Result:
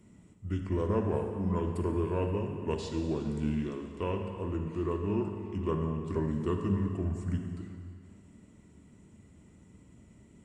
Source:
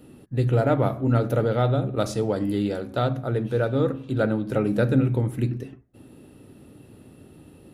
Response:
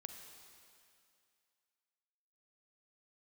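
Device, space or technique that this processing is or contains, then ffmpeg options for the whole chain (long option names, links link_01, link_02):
slowed and reverbed: -filter_complex "[0:a]asetrate=32634,aresample=44100[link_01];[1:a]atrim=start_sample=2205[link_02];[link_01][link_02]afir=irnorm=-1:irlink=0,volume=-3.5dB"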